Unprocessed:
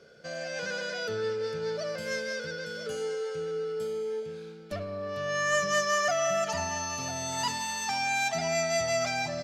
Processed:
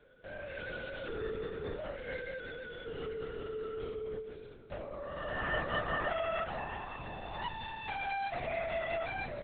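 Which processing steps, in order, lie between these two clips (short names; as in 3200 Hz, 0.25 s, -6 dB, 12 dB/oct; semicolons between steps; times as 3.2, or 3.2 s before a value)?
LPC vocoder at 8 kHz whisper; gain -7 dB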